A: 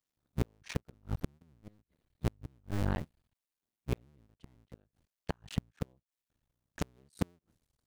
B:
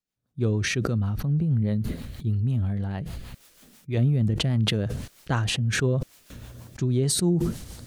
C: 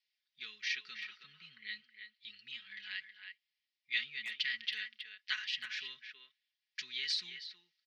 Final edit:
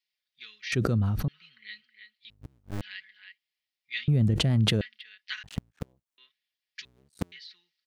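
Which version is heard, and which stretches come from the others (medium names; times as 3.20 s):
C
0.72–1.28 s: from B
2.30–2.81 s: from A
4.08–4.81 s: from B
5.43–6.18 s: from A
6.85–7.32 s: from A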